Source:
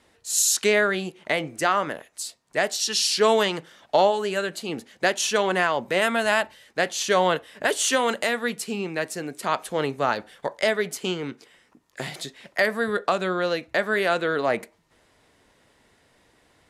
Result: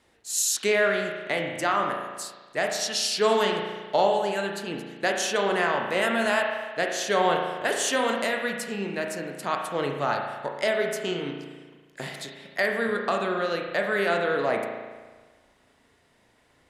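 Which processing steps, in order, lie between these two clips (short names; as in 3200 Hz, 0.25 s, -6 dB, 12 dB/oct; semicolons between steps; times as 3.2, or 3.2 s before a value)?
spring tank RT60 1.4 s, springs 35 ms, chirp 65 ms, DRR 2 dB; gain -4 dB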